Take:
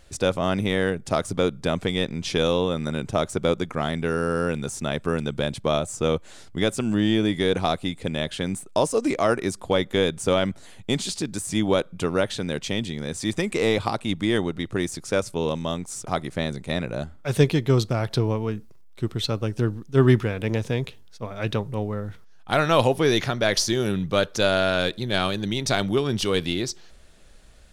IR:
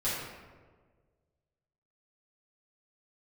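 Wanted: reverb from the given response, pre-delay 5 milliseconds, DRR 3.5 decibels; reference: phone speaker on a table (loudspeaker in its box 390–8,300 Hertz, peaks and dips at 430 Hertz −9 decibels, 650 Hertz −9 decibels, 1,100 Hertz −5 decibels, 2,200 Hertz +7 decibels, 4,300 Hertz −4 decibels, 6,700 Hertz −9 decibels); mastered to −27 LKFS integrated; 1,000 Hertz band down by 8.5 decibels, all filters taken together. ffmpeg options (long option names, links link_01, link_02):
-filter_complex "[0:a]equalizer=frequency=1000:width_type=o:gain=-7.5,asplit=2[link_01][link_02];[1:a]atrim=start_sample=2205,adelay=5[link_03];[link_02][link_03]afir=irnorm=-1:irlink=0,volume=-11dB[link_04];[link_01][link_04]amix=inputs=2:normalize=0,highpass=frequency=390:width=0.5412,highpass=frequency=390:width=1.3066,equalizer=frequency=430:width_type=q:width=4:gain=-9,equalizer=frequency=650:width_type=q:width=4:gain=-9,equalizer=frequency=1100:width_type=q:width=4:gain=-5,equalizer=frequency=2200:width_type=q:width=4:gain=7,equalizer=frequency=4300:width_type=q:width=4:gain=-4,equalizer=frequency=6700:width_type=q:width=4:gain=-9,lowpass=frequency=8300:width=0.5412,lowpass=frequency=8300:width=1.3066,volume=2.5dB"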